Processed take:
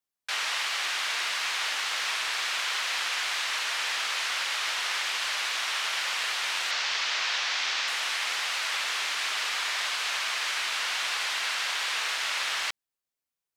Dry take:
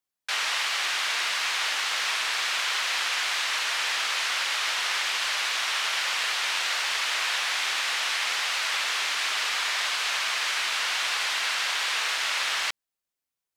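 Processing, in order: 6.71–7.88 s: resonant high shelf 7.7 kHz -11 dB, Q 1.5; trim -2.5 dB

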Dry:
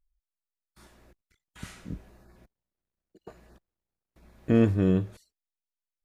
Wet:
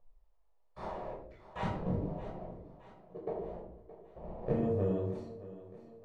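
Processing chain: 1.66–4.55 s: median filter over 41 samples; level-controlled noise filter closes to 2.9 kHz, open at -20 dBFS; high-order bell 630 Hz +15.5 dB; compression 10:1, threshold -37 dBFS, peak gain reduction 28.5 dB; thinning echo 620 ms, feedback 51%, high-pass 150 Hz, level -15 dB; reverberation RT60 0.60 s, pre-delay 10 ms, DRR -4 dB

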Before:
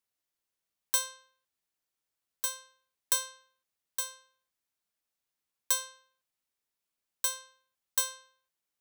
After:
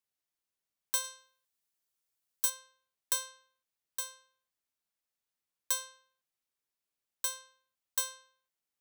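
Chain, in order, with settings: 1.04–2.50 s: treble shelf 4.6 kHz +7.5 dB; trim -3.5 dB

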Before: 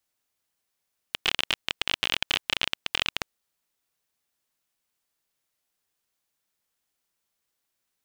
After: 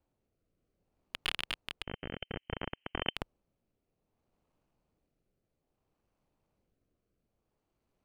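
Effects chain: median filter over 25 samples; tilt EQ -2 dB/octave; in parallel at +2 dB: peak limiter -27.5 dBFS, peak gain reduction 8.5 dB; 1.83–3.16 s: on the sum: frequency inversion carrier 3.1 kHz; rotary cabinet horn 0.6 Hz; trim +3 dB

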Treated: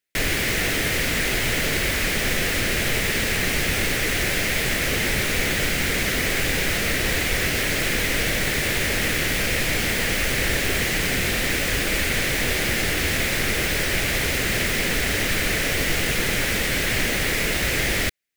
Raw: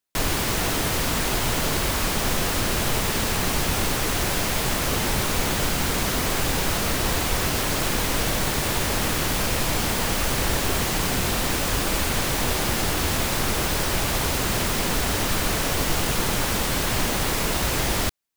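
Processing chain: graphic EQ 500/1000/2000 Hz +4/-11/+12 dB; trim -1 dB

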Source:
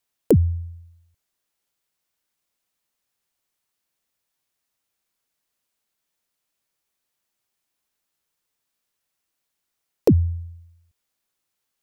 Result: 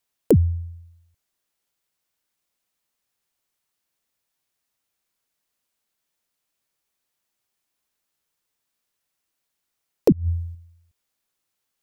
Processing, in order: 10.12–10.55 s: compressor with a negative ratio -24 dBFS, ratio -0.5

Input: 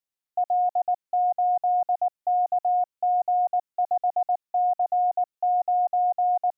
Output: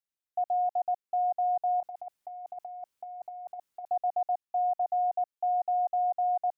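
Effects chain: 1.80–3.88 s: compressor with a negative ratio -31 dBFS, ratio -0.5; trim -5 dB

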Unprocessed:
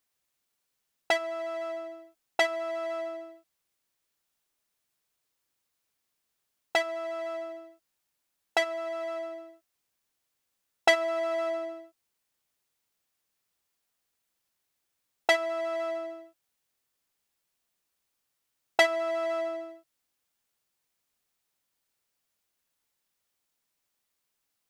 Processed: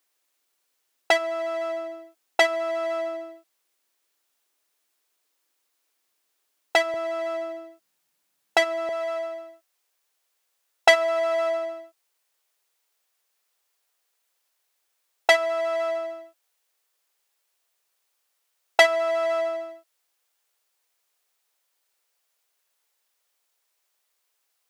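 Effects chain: high-pass 280 Hz 24 dB/octave, from 6.94 s 120 Hz, from 8.89 s 410 Hz; trim +6 dB

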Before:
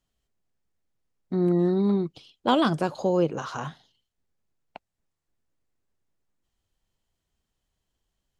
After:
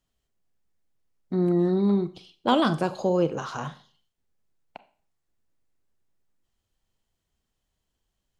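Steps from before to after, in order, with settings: Schroeder reverb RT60 0.43 s, combs from 29 ms, DRR 13 dB

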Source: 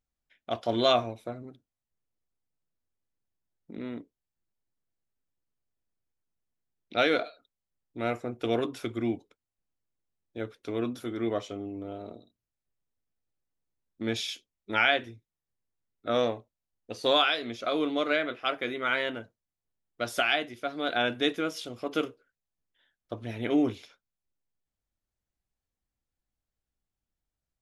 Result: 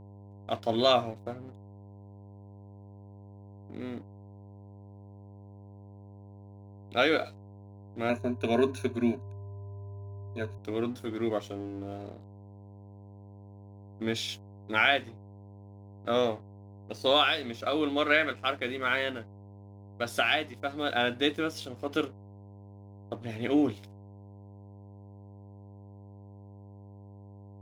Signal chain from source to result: crossover distortion -52.5 dBFS; 17.82–18.36 s: dynamic bell 1.9 kHz, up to +6 dB, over -40 dBFS, Q 0.92; mains buzz 100 Hz, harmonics 10, -49 dBFS -7 dB/octave; 8.09–10.58 s: rippled EQ curve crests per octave 1.5, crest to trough 17 dB

